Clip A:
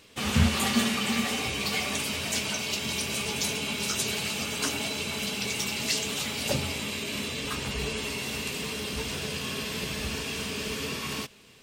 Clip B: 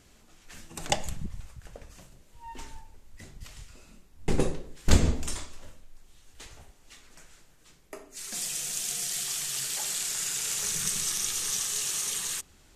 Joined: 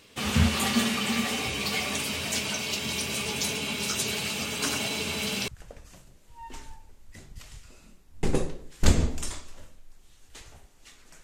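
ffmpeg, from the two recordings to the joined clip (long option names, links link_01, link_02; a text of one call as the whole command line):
ffmpeg -i cue0.wav -i cue1.wav -filter_complex "[0:a]asettb=1/sr,asplit=3[link_01][link_02][link_03];[link_01]atrim=end=4.544[link_04];[link_02]atrim=start=4.54:end=5.48,asetpts=PTS-STARTPTS,afade=type=in:duration=0.004:curve=qsin,afade=type=out:start_time=0.936:duration=0.004:curve=qsin,aecho=1:1:92:0.596,atrim=end_sample=41454[link_05];[link_03]atrim=start=5.476[link_06];[link_04][link_05]acrossfade=duration=0.004:curve1=hsin:curve2=qsin[link_07];[link_07][link_06]acrossfade=duration=0.004:curve1=qsin:curve2=hsin,apad=whole_dur=11.23,atrim=end=11.23,atrim=end=5.482[link_08];[1:a]atrim=start=1.528:end=7.28[link_09];[link_08][link_09]acrossfade=duration=0.004:curve1=hsin:curve2=hsin" out.wav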